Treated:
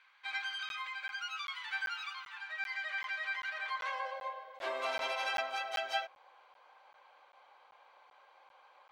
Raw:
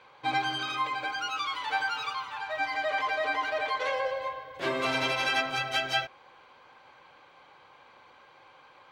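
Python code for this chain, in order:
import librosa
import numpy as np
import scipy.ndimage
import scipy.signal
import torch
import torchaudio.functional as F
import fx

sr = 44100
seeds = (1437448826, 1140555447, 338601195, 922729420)

y = fx.filter_sweep_highpass(x, sr, from_hz=1700.0, to_hz=660.0, start_s=3.46, end_s=4.33, q=1.8)
y = fx.buffer_crackle(y, sr, first_s=0.69, period_s=0.39, block=512, kind='zero')
y = F.gain(torch.from_numpy(y), -9.0).numpy()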